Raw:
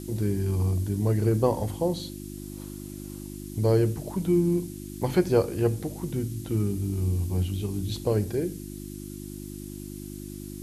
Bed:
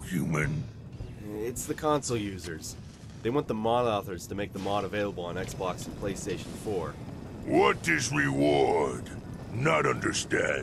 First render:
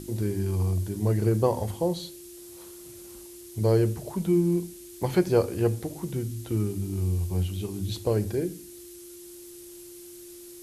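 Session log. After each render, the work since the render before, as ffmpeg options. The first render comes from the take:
-af "bandreject=f=50:t=h:w=4,bandreject=f=100:t=h:w=4,bandreject=f=150:t=h:w=4,bandreject=f=200:t=h:w=4,bandreject=f=250:t=h:w=4,bandreject=f=300:t=h:w=4"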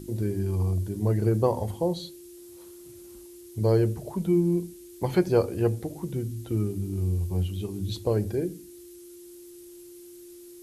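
-af "afftdn=nr=6:nf=-45"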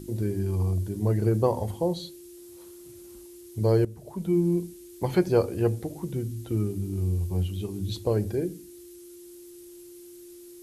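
-filter_complex "[0:a]asplit=2[a][b];[a]atrim=end=3.85,asetpts=PTS-STARTPTS,afade=t=out:st=3.846:d=0.004:c=hsin:silence=0.177828[c];[b]atrim=start=3.85,asetpts=PTS-STARTPTS,afade=t=in:d=0.59:silence=0.177828[d];[c][d]concat=n=2:v=0:a=1"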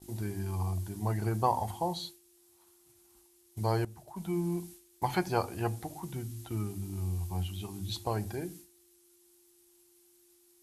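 -af "agate=range=-33dB:threshold=-38dB:ratio=3:detection=peak,lowshelf=f=630:t=q:w=3:g=-7"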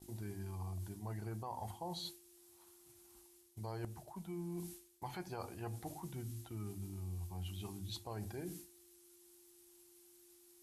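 -af "alimiter=limit=-23dB:level=0:latency=1:release=127,areverse,acompressor=threshold=-43dB:ratio=4,areverse"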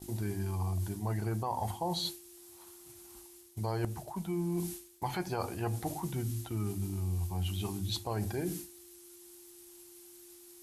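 -af "volume=10dB"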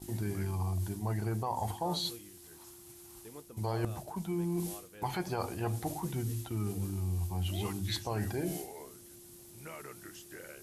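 -filter_complex "[1:a]volume=-22dB[a];[0:a][a]amix=inputs=2:normalize=0"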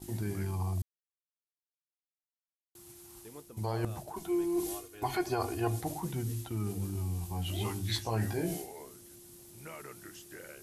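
-filter_complex "[0:a]asettb=1/sr,asplit=3[a][b][c];[a]atrim=end=4.134[d];[b]atrim=start=4.13:end=5.81,asetpts=PTS-STARTPTS,afade=t=in:d=0.004:c=qsin,afade=t=out:st=1.676:d=0.004:c=qsin,aecho=1:1:2.8:0.99,atrim=end_sample=74088[e];[c]atrim=start=5.806[f];[d][e]acrossfade=d=0.004:c1=hsin:c2=qsin[g];[g][f]acrossfade=d=0.004:c1=qsin:c2=hsin,asettb=1/sr,asplit=3[h][i][j];[h]atrim=end=6.934[k];[i]atrim=start=6.93:end=8.55,asetpts=PTS-STARTPTS,afade=t=in:d=0.004:c=qsin,afade=t=out:st=1.616:d=0.004:c=qsin,asplit=2[l][m];[m]adelay=18,volume=-4dB[n];[l][n]amix=inputs=2:normalize=0,atrim=end_sample=71442[o];[j]atrim=start=8.546[p];[k][o]acrossfade=d=0.004:c1=hsin:c2=qsin[q];[q][p]acrossfade=d=0.004:c1=qsin:c2=hsin,asplit=3[r][s][t];[r]atrim=end=0.82,asetpts=PTS-STARTPTS,afade=t=out:st=0.816:d=0.004:c=hsin[u];[s]atrim=start=0.82:end=2.75,asetpts=PTS-STARTPTS,volume=0[v];[t]atrim=start=2.75,asetpts=PTS-STARTPTS,afade=t=in:d=0.004:c=hsin[w];[u][v][w]concat=n=3:v=0:a=1"

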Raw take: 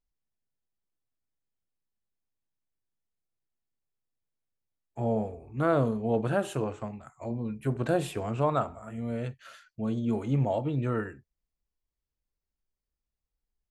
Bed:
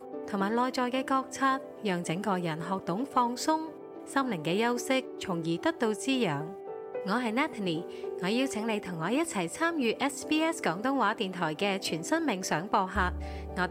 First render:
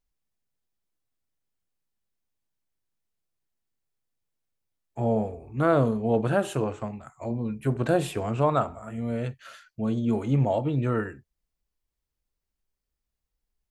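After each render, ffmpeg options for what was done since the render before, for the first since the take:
-af "volume=3.5dB"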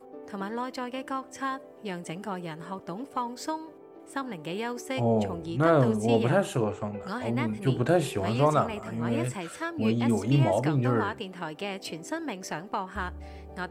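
-filter_complex "[1:a]volume=-5dB[a];[0:a][a]amix=inputs=2:normalize=0"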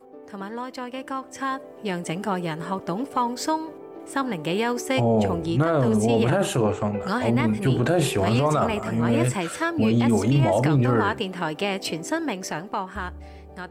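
-af "alimiter=limit=-21dB:level=0:latency=1:release=21,dynaudnorm=f=240:g=13:m=9dB"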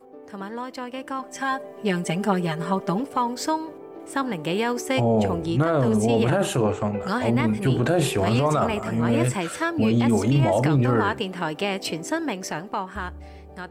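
-filter_complex "[0:a]asettb=1/sr,asplit=3[a][b][c];[a]atrim=end=1.194[d];[b]atrim=start=1.19:end=3,asetpts=PTS-STARTPTS,afade=t=in:d=0.004:c=qsin,afade=t=out:st=1.806:d=0.004:c=qsin,aecho=1:1:5:0.92,atrim=end_sample=79821[e];[c]atrim=start=2.996[f];[d][e]acrossfade=d=0.004:c1=hsin:c2=qsin[g];[g][f]acrossfade=d=0.004:c1=qsin:c2=hsin"

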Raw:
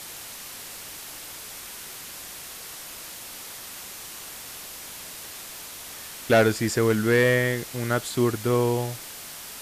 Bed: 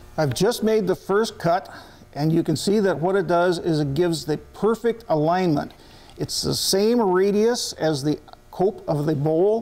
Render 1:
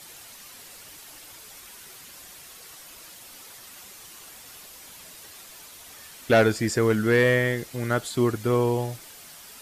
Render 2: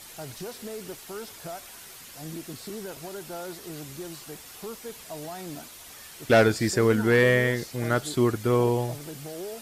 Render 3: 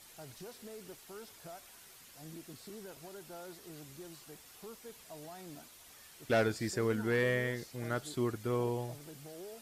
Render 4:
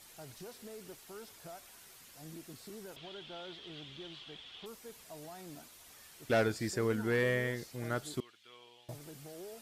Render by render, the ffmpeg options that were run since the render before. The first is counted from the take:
-af "afftdn=nr=8:nf=-40"
-filter_complex "[1:a]volume=-18.5dB[a];[0:a][a]amix=inputs=2:normalize=0"
-af "volume=-11dB"
-filter_complex "[0:a]asettb=1/sr,asplit=3[a][b][c];[a]atrim=end=2.964[d];[b]atrim=start=2.96:end=4.66,asetpts=PTS-STARTPTS,afade=t=in:d=0.004:c=qsin,afade=t=out:st=1.696:d=0.004:c=qsin,lowpass=f=3.3k:t=q:w=8.1[e];[c]atrim=start=4.656[f];[d][e]acrossfade=d=0.004:c1=hsin:c2=qsin[g];[g][f]acrossfade=d=0.004:c1=qsin:c2=hsin,asettb=1/sr,asplit=3[h][i][j];[h]atrim=end=8.204[k];[i]atrim=start=8.2:end=8.89,asetpts=PTS-STARTPTS,afade=t=in:d=0.004:c=qsin,afade=t=out:st=0.686:d=0.004:c=qsin,bandpass=f=3.2k:t=q:w=3.3[l];[j]atrim=start=8.886[m];[k][l]acrossfade=d=0.004:c1=hsin:c2=qsin[n];[n][m]acrossfade=d=0.004:c1=qsin:c2=hsin"

